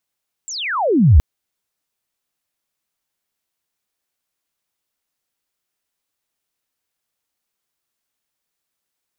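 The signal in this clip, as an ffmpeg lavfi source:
-f lavfi -i "aevalsrc='pow(10,(-26+22*t/0.72)/20)*sin(2*PI*7800*0.72/log(61/7800)*(exp(log(61/7800)*t/0.72)-1))':d=0.72:s=44100"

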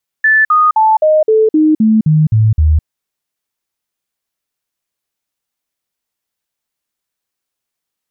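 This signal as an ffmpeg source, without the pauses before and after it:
-f lavfi -i "aevalsrc='0.501*clip(min(mod(t,0.26),0.21-mod(t,0.26))/0.005,0,1)*sin(2*PI*1750*pow(2,-floor(t/0.26)/2)*mod(t,0.26))':d=2.6:s=44100"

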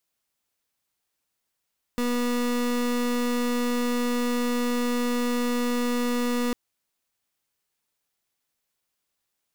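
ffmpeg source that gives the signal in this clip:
-f lavfi -i "aevalsrc='0.0562*(2*lt(mod(243*t,1),0.31)-1)':d=4.55:s=44100"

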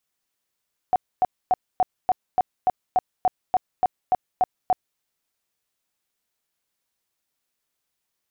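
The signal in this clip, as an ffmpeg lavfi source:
-f lavfi -i "aevalsrc='0.188*sin(2*PI*740*mod(t,0.29))*lt(mod(t,0.29),21/740)':d=4.06:s=44100"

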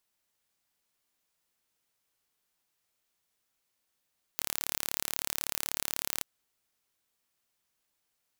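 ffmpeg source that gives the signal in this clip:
-f lavfi -i "aevalsrc='0.596*eq(mod(n,1218),0)':d=1.85:s=44100"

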